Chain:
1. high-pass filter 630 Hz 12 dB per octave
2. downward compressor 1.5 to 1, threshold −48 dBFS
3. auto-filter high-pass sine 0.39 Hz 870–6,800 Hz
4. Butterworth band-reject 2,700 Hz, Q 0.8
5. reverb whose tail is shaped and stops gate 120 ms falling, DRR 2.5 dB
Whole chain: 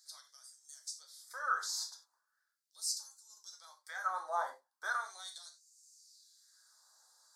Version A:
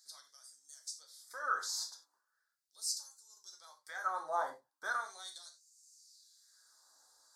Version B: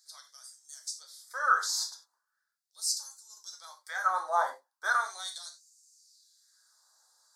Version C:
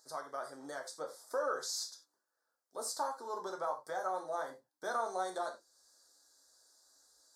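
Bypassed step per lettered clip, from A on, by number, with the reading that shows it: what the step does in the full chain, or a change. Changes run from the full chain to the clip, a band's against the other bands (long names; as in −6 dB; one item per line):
1, 500 Hz band +2.5 dB
2, average gain reduction 6.5 dB
3, 500 Hz band +14.5 dB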